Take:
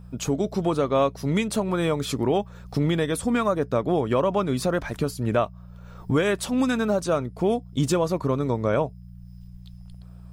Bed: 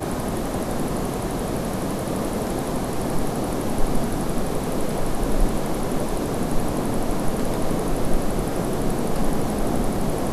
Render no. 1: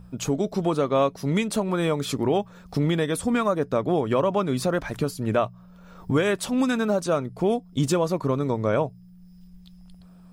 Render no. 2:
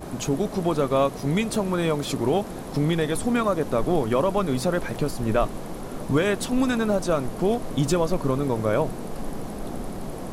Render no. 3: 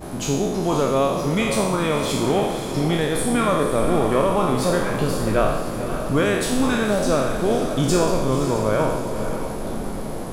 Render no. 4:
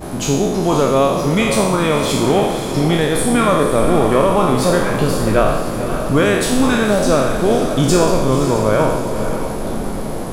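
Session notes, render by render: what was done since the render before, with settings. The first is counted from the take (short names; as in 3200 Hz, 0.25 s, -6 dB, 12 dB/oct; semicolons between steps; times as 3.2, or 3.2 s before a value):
de-hum 60 Hz, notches 2
add bed -10 dB
spectral trails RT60 1.03 s; diffused feedback echo 0.522 s, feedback 45%, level -8 dB
gain +5.5 dB; limiter -2 dBFS, peak gain reduction 1.5 dB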